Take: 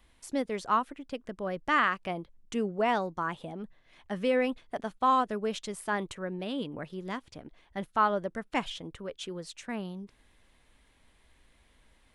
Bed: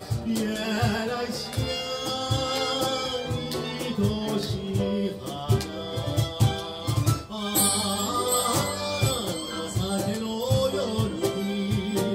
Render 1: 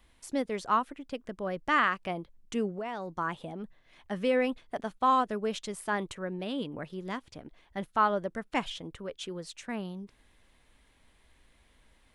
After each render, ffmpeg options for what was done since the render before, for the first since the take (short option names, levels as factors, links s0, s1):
-filter_complex "[0:a]asettb=1/sr,asplit=3[s0][s1][s2];[s0]atrim=end=2.694[s3];[s1]atrim=start=2.69:end=3.18,asetpts=PTS-STARTPTS,afade=t=in:d=0.004:c=qsin,afade=t=out:st=0.486:d=0.004:c=qsin,acompressor=threshold=0.0224:ratio=6:attack=3.2:release=140:knee=1:detection=peak[s4];[s2]atrim=start=3.176[s5];[s3][s4]acrossfade=d=0.004:c1=hsin:c2=qsin[s6];[s6][s5]acrossfade=d=0.004:c1=qsin:c2=hsin"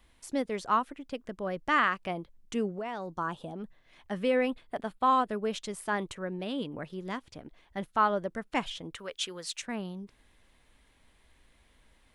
-filter_complex "[0:a]asettb=1/sr,asplit=3[s0][s1][s2];[s0]atrim=end=3.064[s3];[s1]atrim=start=3.06:end=3.56,asetpts=PTS-STARTPTS,afade=t=in:d=0.004:c=qsin,afade=t=out:st=0.496:d=0.004:c=qsin,equalizer=f=2100:w=4.3:g=-14[s4];[s2]atrim=start=3.556[s5];[s3][s4]acrossfade=d=0.004:c1=hsin:c2=qsin[s6];[s6][s5]acrossfade=d=0.004:c1=qsin:c2=hsin,asettb=1/sr,asplit=3[s7][s8][s9];[s7]atrim=end=4.204[s10];[s8]atrim=start=4.2:end=5.53,asetpts=PTS-STARTPTS,afade=t=in:d=0.004:c=qsin,afade=t=out:st=1.326:d=0.004:c=qsin,equalizer=f=6100:t=o:w=0.3:g=-10[s11];[s9]atrim=start=5.526[s12];[s10][s11]acrossfade=d=0.004:c1=hsin:c2=qsin[s13];[s13][s12]acrossfade=d=0.004:c1=qsin:c2=hsin,asettb=1/sr,asplit=3[s14][s15][s16];[s14]atrim=end=8.944[s17];[s15]atrim=start=8.94:end=9.62,asetpts=PTS-STARTPTS,afade=t=in:d=0.004:c=qsin,afade=t=out:st=0.676:d=0.004:c=qsin,tiltshelf=f=640:g=-8.5[s18];[s16]atrim=start=9.616[s19];[s17][s18]acrossfade=d=0.004:c1=hsin:c2=qsin[s20];[s20][s19]acrossfade=d=0.004:c1=qsin:c2=hsin"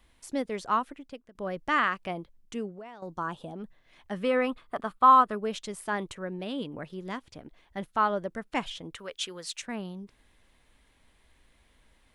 -filter_complex "[0:a]asettb=1/sr,asplit=3[s0][s1][s2];[s0]atrim=end=4.244[s3];[s1]atrim=start=4.24:end=5.35,asetpts=PTS-STARTPTS,afade=t=in:d=0.004:c=qsin,afade=t=out:st=1.106:d=0.004:c=qsin,equalizer=f=1200:t=o:w=0.44:g=14[s4];[s2]atrim=start=5.346[s5];[s3][s4]acrossfade=d=0.004:c1=hsin:c2=qsin[s6];[s6][s5]acrossfade=d=0.004:c1=qsin:c2=hsin,asplit=3[s7][s8][s9];[s7]atrim=end=1.35,asetpts=PTS-STARTPTS,afade=t=out:st=0.92:d=0.43:silence=0.0668344[s10];[s8]atrim=start=1.35:end=3.02,asetpts=PTS-STARTPTS,afade=t=in:d=0.004:c=hsin:silence=0.0668344,afade=t=out:st=0.86:d=0.81:silence=0.251189[s11];[s9]atrim=start=3.02,asetpts=PTS-STARTPTS,afade=t=in:d=0.004:c=hsin:silence=0.251189[s12];[s10][s11][s12]concat=n=3:v=0:a=1"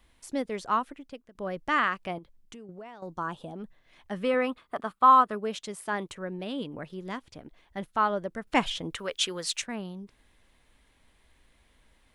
-filter_complex "[0:a]asettb=1/sr,asplit=3[s0][s1][s2];[s0]atrim=end=2.184[s3];[s1]atrim=start=2.18:end=2.69,asetpts=PTS-STARTPTS,afade=t=in:d=0.004:c=qsin,afade=t=out:st=0.506:d=0.004:c=qsin,acompressor=threshold=0.00794:ratio=12:attack=3.2:release=140:knee=1:detection=peak[s4];[s2]atrim=start=2.686[s5];[s3][s4]acrossfade=d=0.004:c1=hsin:c2=qsin[s6];[s6][s5]acrossfade=d=0.004:c1=qsin:c2=hsin,asettb=1/sr,asplit=3[s7][s8][s9];[s7]atrim=end=4.344[s10];[s8]atrim=start=4.34:end=6.13,asetpts=PTS-STARTPTS,afade=t=in:d=0.004:c=qsin,afade=t=out:st=1.786:d=0.004:c=qsin,highpass=f=110:p=1[s11];[s9]atrim=start=6.126[s12];[s10][s11]acrossfade=d=0.004:c1=hsin:c2=qsin[s13];[s13][s12]acrossfade=d=0.004:c1=qsin:c2=hsin,asettb=1/sr,asplit=3[s14][s15][s16];[s14]atrim=end=8.474[s17];[s15]atrim=start=8.47:end=9.64,asetpts=PTS-STARTPTS,afade=t=in:d=0.004:c=qsin,afade=t=out:st=1.166:d=0.004:c=qsin,acontrast=59[s18];[s16]atrim=start=9.636[s19];[s17][s18]acrossfade=d=0.004:c1=hsin:c2=qsin[s20];[s20][s19]acrossfade=d=0.004:c1=qsin:c2=hsin"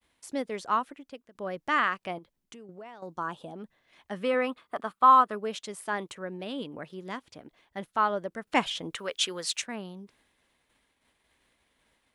-af "agate=range=0.0224:threshold=0.00126:ratio=3:detection=peak,highpass=f=210:p=1"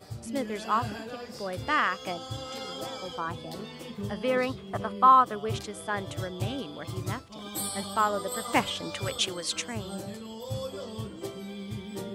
-filter_complex "[1:a]volume=0.266[s0];[0:a][s0]amix=inputs=2:normalize=0"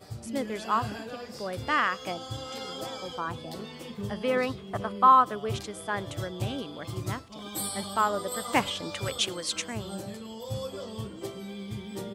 -filter_complex "[0:a]asplit=2[s0][s1];[s1]adelay=105,volume=0.0355,highshelf=f=4000:g=-2.36[s2];[s0][s2]amix=inputs=2:normalize=0"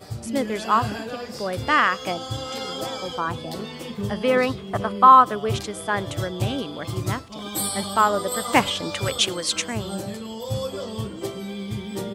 -af "volume=2.24,alimiter=limit=0.708:level=0:latency=1"